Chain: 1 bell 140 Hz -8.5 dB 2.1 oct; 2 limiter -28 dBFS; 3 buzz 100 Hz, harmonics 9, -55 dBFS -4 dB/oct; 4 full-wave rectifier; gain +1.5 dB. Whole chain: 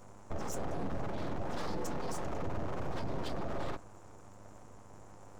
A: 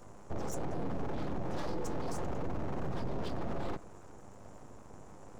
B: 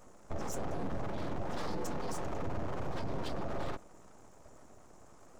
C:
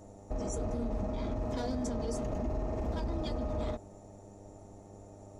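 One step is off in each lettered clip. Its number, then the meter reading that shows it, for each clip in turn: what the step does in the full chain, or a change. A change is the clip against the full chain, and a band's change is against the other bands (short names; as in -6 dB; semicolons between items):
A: 1, 250 Hz band +3.0 dB; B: 3, momentary loudness spread change +3 LU; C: 4, 2 kHz band -7.5 dB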